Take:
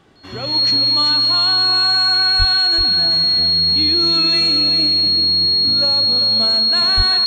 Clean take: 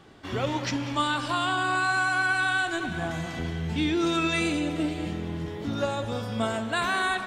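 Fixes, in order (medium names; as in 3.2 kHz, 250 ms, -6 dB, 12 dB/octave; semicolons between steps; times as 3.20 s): band-stop 4.3 kHz, Q 30; 2.38–2.50 s: high-pass 140 Hz 24 dB/octave; 6.96–7.08 s: high-pass 140 Hz 24 dB/octave; inverse comb 387 ms -8.5 dB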